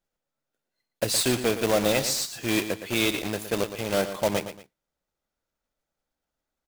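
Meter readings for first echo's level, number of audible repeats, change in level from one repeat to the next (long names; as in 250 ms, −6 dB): −11.0 dB, 2, −9.5 dB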